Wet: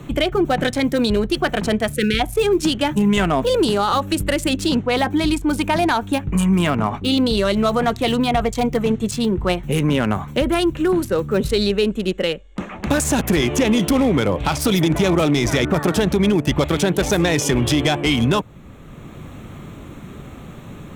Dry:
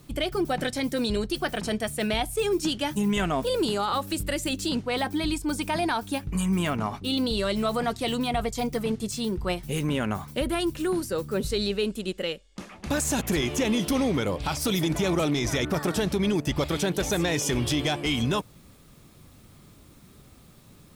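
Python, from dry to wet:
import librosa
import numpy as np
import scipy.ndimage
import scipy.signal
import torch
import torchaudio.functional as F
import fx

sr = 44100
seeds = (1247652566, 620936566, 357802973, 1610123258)

y = fx.wiener(x, sr, points=9)
y = fx.spec_erase(y, sr, start_s=1.95, length_s=0.25, low_hz=520.0, high_hz=1300.0)
y = fx.band_squash(y, sr, depth_pct=40)
y = y * 10.0 ** (8.5 / 20.0)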